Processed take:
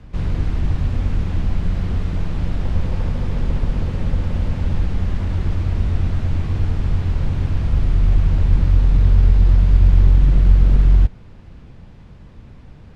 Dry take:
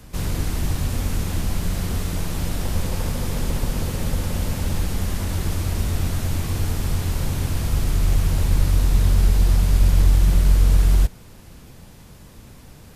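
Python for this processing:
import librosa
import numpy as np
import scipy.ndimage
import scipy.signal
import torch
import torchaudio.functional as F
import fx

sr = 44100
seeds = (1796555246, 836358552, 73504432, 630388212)

y = np.minimum(x, 2.0 * 10.0 ** (-12.5 / 20.0) - x)
y = scipy.signal.sosfilt(scipy.signal.butter(2, 3000.0, 'lowpass', fs=sr, output='sos'), y)
y = fx.low_shelf(y, sr, hz=200.0, db=7.0)
y = y * 10.0 ** (-2.0 / 20.0)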